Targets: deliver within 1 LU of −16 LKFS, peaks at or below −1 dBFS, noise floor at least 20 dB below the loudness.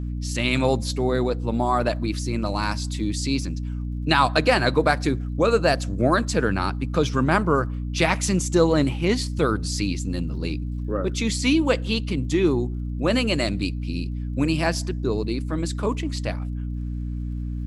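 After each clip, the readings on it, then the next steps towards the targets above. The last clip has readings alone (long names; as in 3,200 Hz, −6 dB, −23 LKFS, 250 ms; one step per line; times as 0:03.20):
crackle rate 39 per second; mains hum 60 Hz; hum harmonics up to 300 Hz; level of the hum −26 dBFS; integrated loudness −23.5 LKFS; sample peak −4.0 dBFS; target loudness −16.0 LKFS
→ click removal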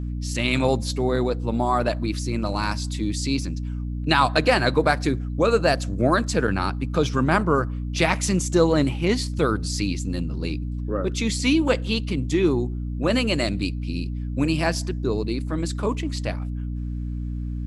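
crackle rate 0.11 per second; mains hum 60 Hz; hum harmonics up to 300 Hz; level of the hum −26 dBFS
→ hum removal 60 Hz, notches 5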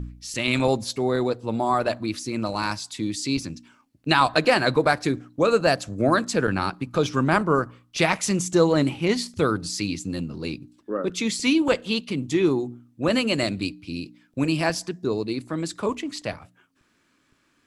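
mains hum none found; integrated loudness −24.0 LKFS; sample peak −4.5 dBFS; target loudness −16.0 LKFS
→ level +8 dB
brickwall limiter −1 dBFS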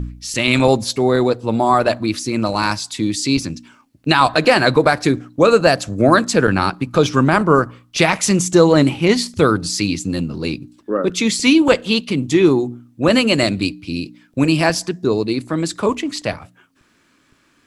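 integrated loudness −16.5 LKFS; sample peak −1.0 dBFS; background noise floor −58 dBFS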